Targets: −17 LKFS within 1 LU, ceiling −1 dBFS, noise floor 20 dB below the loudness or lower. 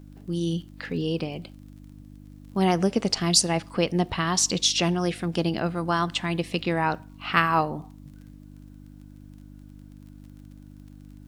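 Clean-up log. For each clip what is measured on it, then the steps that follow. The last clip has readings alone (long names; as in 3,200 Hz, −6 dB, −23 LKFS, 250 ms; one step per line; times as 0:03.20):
crackle rate 30 per second; mains hum 50 Hz; hum harmonics up to 300 Hz; level of the hum −44 dBFS; integrated loudness −25.0 LKFS; sample peak −4.5 dBFS; target loudness −17.0 LKFS
→ click removal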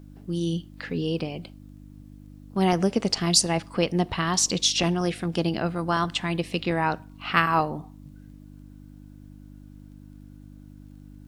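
crackle rate 0.27 per second; mains hum 50 Hz; hum harmonics up to 300 Hz; level of the hum −44 dBFS
→ hum removal 50 Hz, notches 6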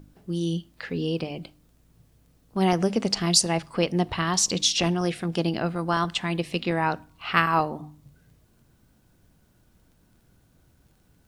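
mains hum none found; integrated loudness −25.0 LKFS; sample peak −4.5 dBFS; target loudness −17.0 LKFS
→ level +8 dB
brickwall limiter −1 dBFS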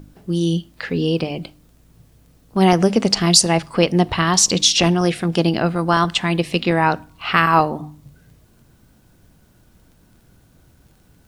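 integrated loudness −17.5 LKFS; sample peak −1.0 dBFS; background noise floor −54 dBFS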